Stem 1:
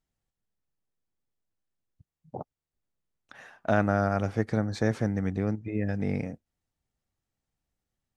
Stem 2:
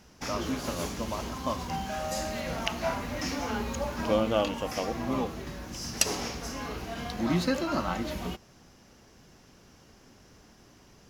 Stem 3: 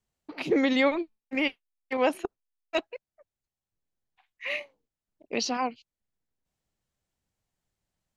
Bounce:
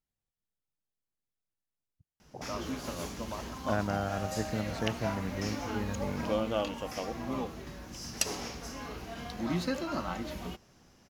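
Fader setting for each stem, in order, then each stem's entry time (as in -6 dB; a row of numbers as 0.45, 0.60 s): -7.5 dB, -5.0 dB, off; 0.00 s, 2.20 s, off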